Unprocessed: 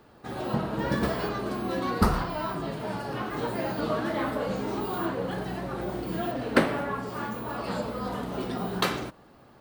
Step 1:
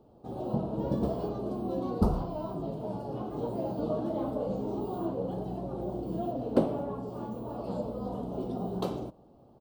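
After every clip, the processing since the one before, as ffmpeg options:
-af "firequalizer=gain_entry='entry(690,0);entry(1800,-29);entry(3000,-14)':delay=0.05:min_phase=1,volume=-2dB"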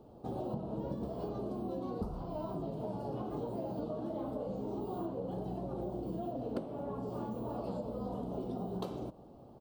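-af "acompressor=threshold=-38dB:ratio=10,volume=3dB"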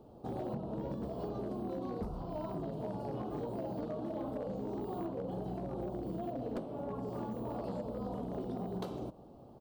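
-af "volume=32dB,asoftclip=hard,volume=-32dB"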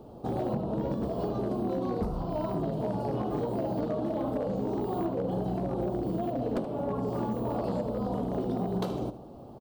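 -af "aecho=1:1:76:0.211,volume=8dB"

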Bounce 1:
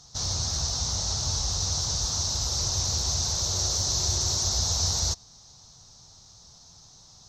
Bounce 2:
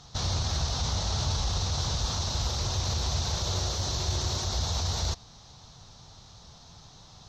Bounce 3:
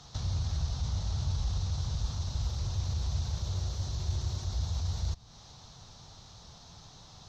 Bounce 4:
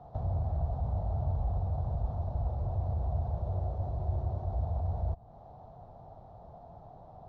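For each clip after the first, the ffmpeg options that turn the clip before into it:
-af "alimiter=limit=-22dB:level=0:latency=1:release=21,highshelf=f=4.2k:t=q:w=1.5:g=-9.5,volume=6dB"
-filter_complex "[0:a]acrossover=split=180[a][b];[b]acompressor=threshold=-45dB:ratio=4[c];[a][c]amix=inputs=2:normalize=0,volume=-1dB"
-af "lowpass=f=690:t=q:w=4.9"

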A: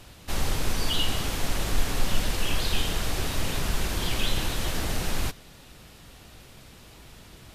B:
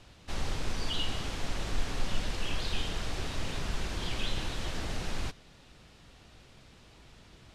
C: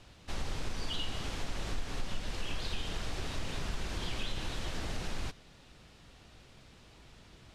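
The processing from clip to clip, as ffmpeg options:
-af "lowpass=6.7k,volume=-6.5dB"
-af "acompressor=threshold=-30dB:ratio=2.5,volume=-1dB"

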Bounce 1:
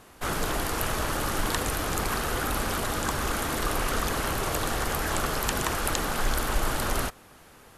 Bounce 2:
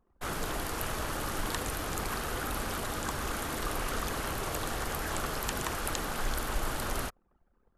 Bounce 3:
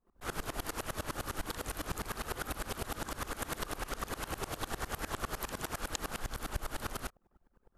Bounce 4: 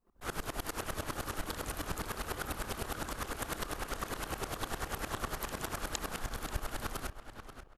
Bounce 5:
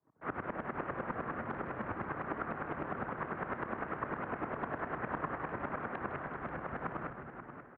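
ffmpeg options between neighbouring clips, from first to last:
-af "anlmdn=0.0398,volume=-6dB"
-af "acompressor=threshold=-37dB:ratio=6,aeval=exprs='val(0)*pow(10,-23*if(lt(mod(-9.9*n/s,1),2*abs(-9.9)/1000),1-mod(-9.9*n/s,1)/(2*abs(-9.9)/1000),(mod(-9.9*n/s,1)-2*abs(-9.9)/1000)/(1-2*abs(-9.9)/1000))/20)':c=same,volume=8.5dB"
-filter_complex "[0:a]asplit=2[a][b];[b]adelay=535,lowpass=f=4.2k:p=1,volume=-9.5dB,asplit=2[c][d];[d]adelay=535,lowpass=f=4.2k:p=1,volume=0.3,asplit=2[e][f];[f]adelay=535,lowpass=f=4.2k:p=1,volume=0.3[g];[a][c][e][g]amix=inputs=4:normalize=0"
-filter_complex "[0:a]asplit=7[a][b][c][d][e][f][g];[b]adelay=158,afreqshift=100,volume=-11dB[h];[c]adelay=316,afreqshift=200,volume=-15.9dB[i];[d]adelay=474,afreqshift=300,volume=-20.8dB[j];[e]adelay=632,afreqshift=400,volume=-25.6dB[k];[f]adelay=790,afreqshift=500,volume=-30.5dB[l];[g]adelay=948,afreqshift=600,volume=-35.4dB[m];[a][h][i][j][k][l][m]amix=inputs=7:normalize=0,highpass=f=180:t=q:w=0.5412,highpass=f=180:t=q:w=1.307,lowpass=f=2.1k:t=q:w=0.5176,lowpass=f=2.1k:t=q:w=0.7071,lowpass=f=2.1k:t=q:w=1.932,afreqshift=-80,volume=2dB"

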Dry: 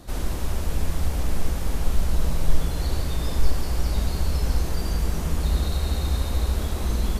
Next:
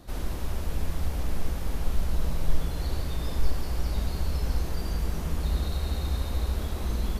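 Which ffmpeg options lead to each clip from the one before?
-af "equalizer=f=7.9k:t=o:w=0.89:g=-4,volume=-4.5dB"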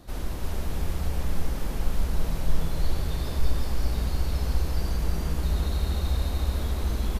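-af "aecho=1:1:343:0.668"

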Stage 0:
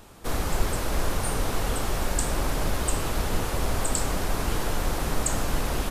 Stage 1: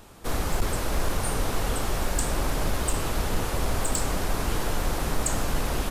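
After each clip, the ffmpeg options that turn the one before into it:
-af "asoftclip=type=hard:threshold=-16.5dB"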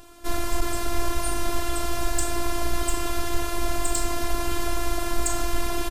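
-filter_complex "[0:a]asplit=2[a][b];[b]adelay=40,volume=-12.5dB[c];[a][c]amix=inputs=2:normalize=0,afftfilt=real='hypot(re,im)*cos(PI*b)':imag='0':win_size=512:overlap=0.75,volume=4.5dB"

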